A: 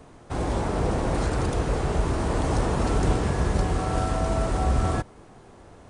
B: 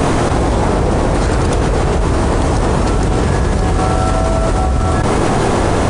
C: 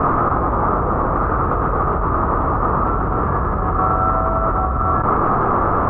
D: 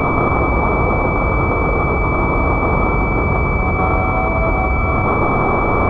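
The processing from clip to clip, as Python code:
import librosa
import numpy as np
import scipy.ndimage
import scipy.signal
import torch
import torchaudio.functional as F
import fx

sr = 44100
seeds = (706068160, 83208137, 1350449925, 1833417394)

y1 = fx.env_flatten(x, sr, amount_pct=100)
y1 = F.gain(torch.from_numpy(y1), 4.5).numpy()
y2 = fx.ladder_lowpass(y1, sr, hz=1300.0, resonance_pct=80)
y2 = F.gain(torch.from_numpy(y2), 5.5).numpy()
y3 = y2 + 10.0 ** (-5.5 / 20.0) * np.pad(y2, (int(172 * sr / 1000.0), 0))[:len(y2)]
y3 = fx.pwm(y3, sr, carrier_hz=2300.0)
y3 = F.gain(torch.from_numpy(y3), 2.5).numpy()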